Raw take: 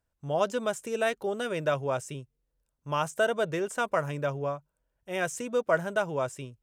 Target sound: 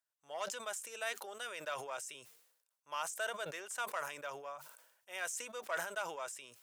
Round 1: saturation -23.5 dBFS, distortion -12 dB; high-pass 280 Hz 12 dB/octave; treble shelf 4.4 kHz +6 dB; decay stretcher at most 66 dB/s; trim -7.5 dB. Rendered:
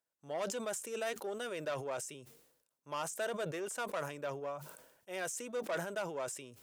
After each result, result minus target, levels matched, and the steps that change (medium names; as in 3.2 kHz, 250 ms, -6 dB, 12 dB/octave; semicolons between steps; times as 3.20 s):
250 Hz band +11.0 dB; saturation: distortion +9 dB
change: high-pass 930 Hz 12 dB/octave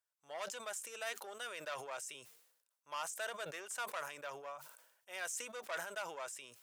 saturation: distortion +9 dB
change: saturation -16 dBFS, distortion -22 dB